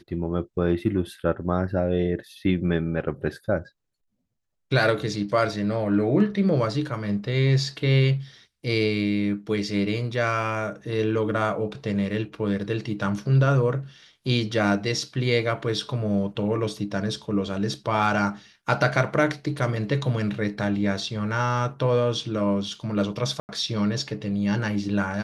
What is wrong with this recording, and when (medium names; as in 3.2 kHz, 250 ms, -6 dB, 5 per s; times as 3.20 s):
23.40–23.49 s: dropout 89 ms